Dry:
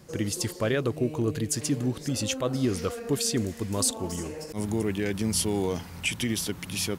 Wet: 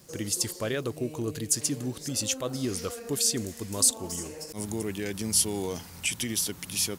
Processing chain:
surface crackle 82 per second −46 dBFS
bass and treble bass −2 dB, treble +9 dB
level −4 dB

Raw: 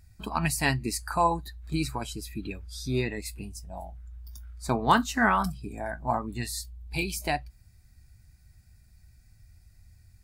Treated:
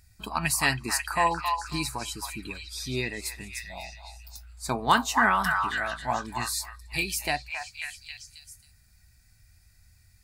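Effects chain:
tilt shelving filter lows −4.5 dB
echo through a band-pass that steps 270 ms, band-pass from 1,200 Hz, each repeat 0.7 octaves, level −2.5 dB

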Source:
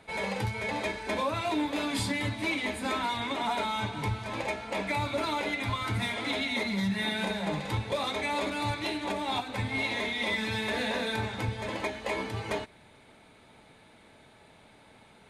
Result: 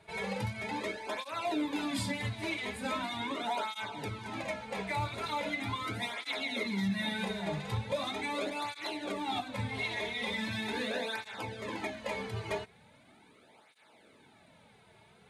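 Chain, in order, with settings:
through-zero flanger with one copy inverted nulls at 0.4 Hz, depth 4 ms
level −1.5 dB

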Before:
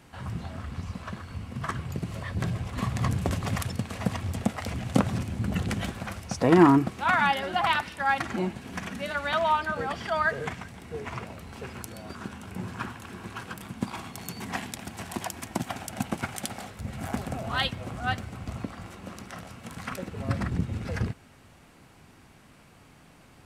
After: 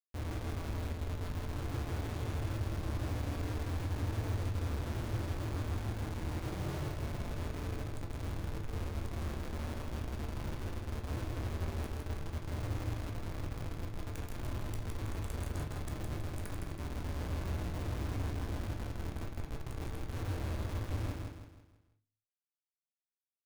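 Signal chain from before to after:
inverse Chebyshev band-stop filter 250–3,400 Hz, stop band 50 dB
spectral tilt −2 dB per octave
downward compressor 4 to 1, threshold −36 dBFS, peak gain reduction 14 dB
comparator with hysteresis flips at −40.5 dBFS
repeating echo 162 ms, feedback 41%, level −4 dB
on a send at −1.5 dB: convolution reverb RT60 0.40 s, pre-delay 13 ms
on the sum: level +1 dB

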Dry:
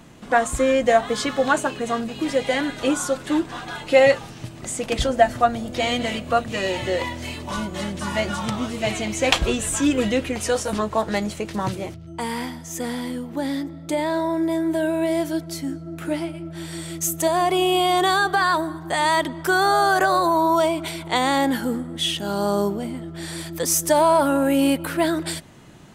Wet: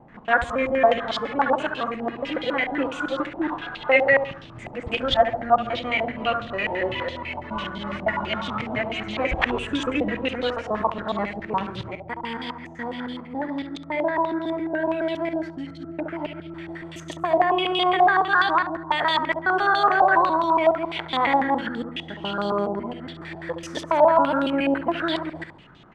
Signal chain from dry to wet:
reversed piece by piece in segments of 139 ms
repeating echo 69 ms, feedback 39%, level −9 dB
low-pass on a step sequencer 12 Hz 790–3,500 Hz
level −5.5 dB

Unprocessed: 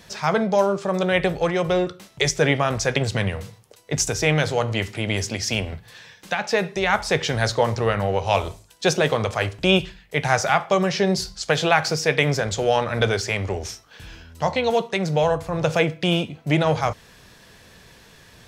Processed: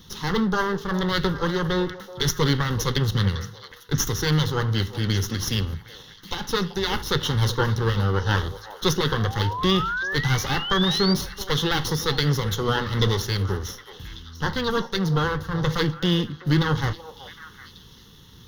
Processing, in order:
lower of the sound and its delayed copy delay 0.32 ms
sound drawn into the spectrogram rise, 0:09.15–0:11.14, 660–4,800 Hz −30 dBFS
phaser with its sweep stopped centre 2,400 Hz, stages 6
on a send: echo through a band-pass that steps 381 ms, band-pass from 650 Hz, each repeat 1.4 octaves, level −9.5 dB
on the sum: boost into a limiter +11.5 dB
level −8 dB

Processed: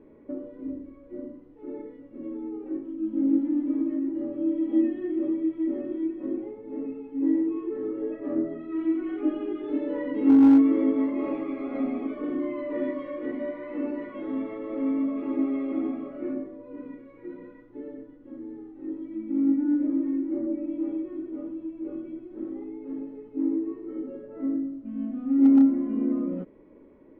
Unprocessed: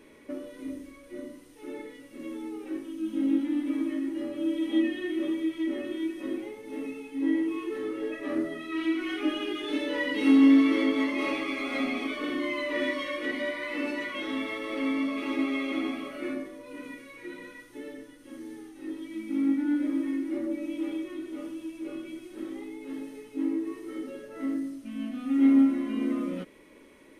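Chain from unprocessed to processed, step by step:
Bessel low-pass filter 580 Hz, order 2
hard clipping −15 dBFS, distortion −27 dB
level +3.5 dB

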